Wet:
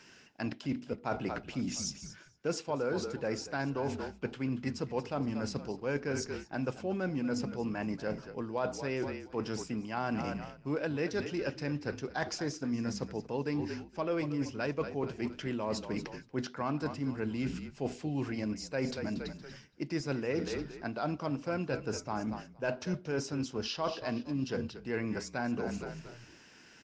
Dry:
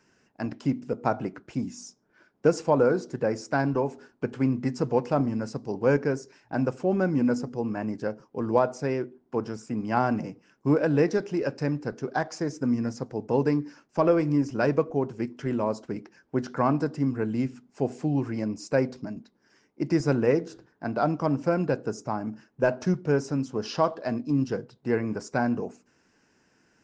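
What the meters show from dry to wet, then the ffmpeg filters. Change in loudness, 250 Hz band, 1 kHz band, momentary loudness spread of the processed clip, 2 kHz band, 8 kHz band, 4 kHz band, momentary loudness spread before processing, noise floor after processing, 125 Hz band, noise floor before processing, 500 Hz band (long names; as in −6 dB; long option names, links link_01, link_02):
−8.5 dB, −8.0 dB, −9.0 dB, 5 LU, −4.5 dB, can't be measured, +2.0 dB, 10 LU, −57 dBFS, −8.5 dB, −68 dBFS, −9.5 dB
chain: -filter_complex "[0:a]equalizer=frequency=3400:width=0.83:gain=12.5,asplit=4[link_01][link_02][link_03][link_04];[link_02]adelay=233,afreqshift=-40,volume=-15dB[link_05];[link_03]adelay=466,afreqshift=-80,volume=-23.6dB[link_06];[link_04]adelay=699,afreqshift=-120,volume=-32.3dB[link_07];[link_01][link_05][link_06][link_07]amix=inputs=4:normalize=0,areverse,acompressor=threshold=-37dB:ratio=4,areverse,volume=3.5dB"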